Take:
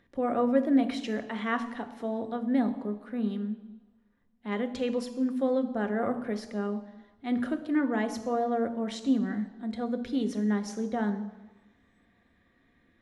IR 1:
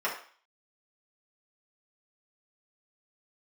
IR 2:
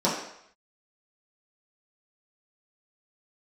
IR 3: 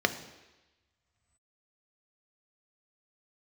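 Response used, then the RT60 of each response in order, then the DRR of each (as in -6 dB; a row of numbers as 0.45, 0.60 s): 3; 0.45, 0.70, 1.1 s; -6.5, -8.5, 8.0 dB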